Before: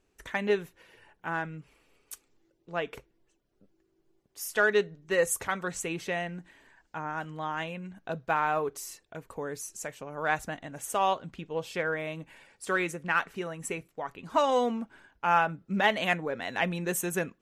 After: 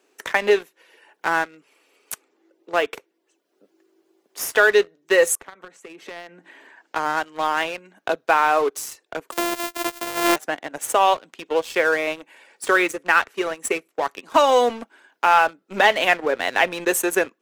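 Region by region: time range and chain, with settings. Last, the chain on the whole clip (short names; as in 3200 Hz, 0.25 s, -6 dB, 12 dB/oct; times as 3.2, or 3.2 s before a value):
5.35–6.96 compressor 8:1, threshold -44 dBFS + tone controls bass +4 dB, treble -7 dB
9.32–10.36 sample sorter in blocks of 128 samples + high shelf 7200 Hz +10.5 dB
whole clip: HPF 300 Hz 24 dB/oct; sample leveller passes 2; three-band squash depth 40%; gain +3.5 dB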